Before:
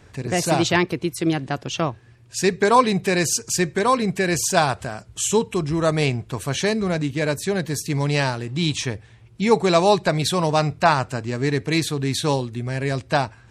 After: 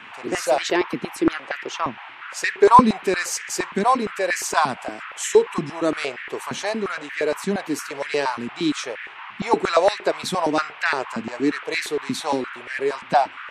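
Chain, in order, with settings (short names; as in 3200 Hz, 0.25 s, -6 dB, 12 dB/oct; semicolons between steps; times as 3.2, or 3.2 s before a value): band noise 820–2800 Hz -37 dBFS; stepped high-pass 8.6 Hz 220–1800 Hz; gain -5 dB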